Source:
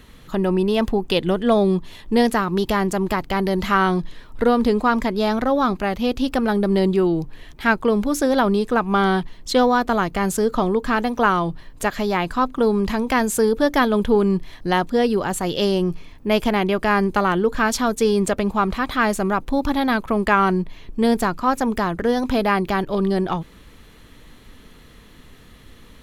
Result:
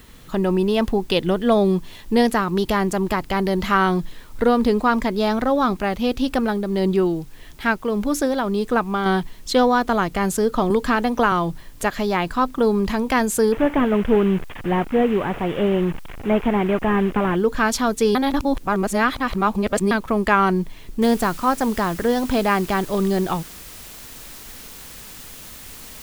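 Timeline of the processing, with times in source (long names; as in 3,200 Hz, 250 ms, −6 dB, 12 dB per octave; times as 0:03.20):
0:06.37–0:09.06: amplitude tremolo 1.7 Hz, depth 46%
0:10.70–0:11.32: multiband upward and downward compressor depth 70%
0:13.52–0:17.36: linear delta modulator 16 kbit/s, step −27 dBFS
0:18.15–0:19.91: reverse
0:21.02: noise floor change −55 dB −40 dB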